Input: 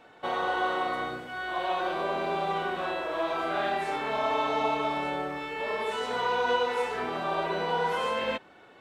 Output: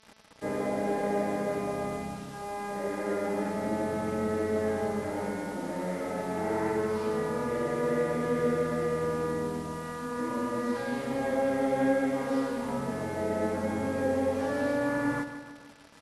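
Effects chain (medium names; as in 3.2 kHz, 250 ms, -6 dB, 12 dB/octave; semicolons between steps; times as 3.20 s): bit crusher 8-bit; comb of notches 670 Hz; mains buzz 400 Hz, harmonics 27, -64 dBFS -1 dB/octave; wide varispeed 0.55×; feedback delay 153 ms, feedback 53%, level -12 dB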